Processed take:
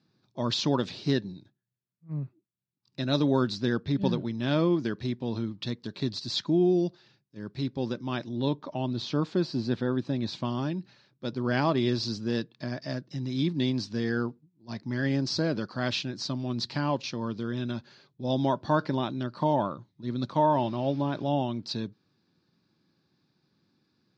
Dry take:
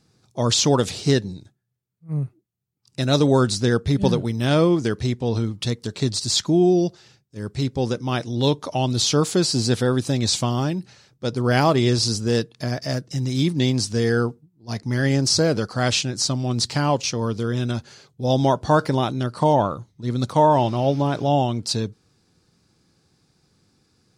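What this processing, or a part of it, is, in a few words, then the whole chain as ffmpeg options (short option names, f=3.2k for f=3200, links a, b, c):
kitchen radio: -filter_complex "[0:a]asettb=1/sr,asplit=3[a][b][c];[a]atrim=end=8.294[d];[b]atrim=start=8.29:end=10.45,asetpts=PTS-STARTPTS,afade=t=in:d=0.004:c=qsin,afade=t=out:st=2.156:d=0.004:c=qsin,highshelf=f=2.9k:g=-10[e];[c]atrim=start=10.446[f];[d][e]acrossfade=d=0.004:c1=hsin:c2=qsin[g];[g][f]acrossfade=d=0.004:c1=qsin:c2=hsin,highpass=170,equalizer=f=460:t=q:w=4:g=-9,equalizer=f=750:t=q:w=4:g=-7,equalizer=f=1.3k:t=q:w=4:g=-5,equalizer=f=2.1k:t=q:w=4:g=-5,equalizer=f=3k:t=q:w=4:g=-5,lowpass=f=4.2k:w=0.5412,lowpass=f=4.2k:w=1.3066,volume=-4dB"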